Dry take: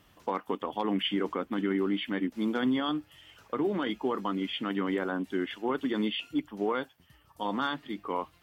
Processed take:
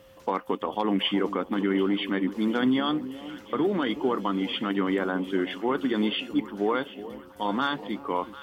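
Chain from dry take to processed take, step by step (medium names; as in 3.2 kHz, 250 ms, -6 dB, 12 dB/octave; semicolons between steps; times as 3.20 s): echo whose repeats swap between lows and highs 371 ms, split 870 Hz, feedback 71%, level -13.5 dB; whistle 530 Hz -56 dBFS; trim +4 dB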